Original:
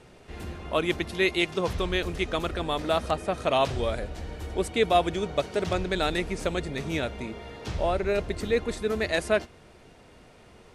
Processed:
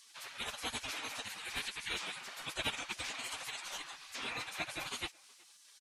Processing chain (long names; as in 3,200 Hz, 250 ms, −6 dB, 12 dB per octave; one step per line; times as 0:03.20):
gate on every frequency bin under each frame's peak −25 dB weak
dynamic equaliser 2,400 Hz, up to +6 dB, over −60 dBFS, Q 6.9
in parallel at +2 dB: downward compressor 6 to 1, threshold −55 dBFS, peak gain reduction 21 dB
on the sum: time stretch by phase vocoder 0.54×
far-end echo of a speakerphone 370 ms, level −24 dB
level +4 dB